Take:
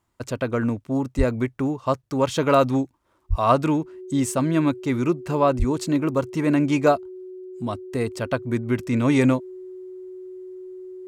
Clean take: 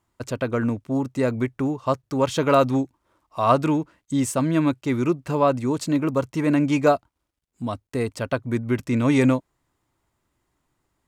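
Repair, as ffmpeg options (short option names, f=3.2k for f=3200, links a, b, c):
-filter_complex "[0:a]bandreject=f=370:w=30,asplit=3[a][b][c];[a]afade=t=out:st=1.17:d=0.02[d];[b]highpass=f=140:w=0.5412,highpass=f=140:w=1.3066,afade=t=in:st=1.17:d=0.02,afade=t=out:st=1.29:d=0.02[e];[c]afade=t=in:st=1.29:d=0.02[f];[d][e][f]amix=inputs=3:normalize=0,asplit=3[g][h][i];[g]afade=t=out:st=3.29:d=0.02[j];[h]highpass=f=140:w=0.5412,highpass=f=140:w=1.3066,afade=t=in:st=3.29:d=0.02,afade=t=out:st=3.41:d=0.02[k];[i]afade=t=in:st=3.41:d=0.02[l];[j][k][l]amix=inputs=3:normalize=0,asplit=3[m][n][o];[m]afade=t=out:st=5.58:d=0.02[p];[n]highpass=f=140:w=0.5412,highpass=f=140:w=1.3066,afade=t=in:st=5.58:d=0.02,afade=t=out:st=5.7:d=0.02[q];[o]afade=t=in:st=5.7:d=0.02[r];[p][q][r]amix=inputs=3:normalize=0"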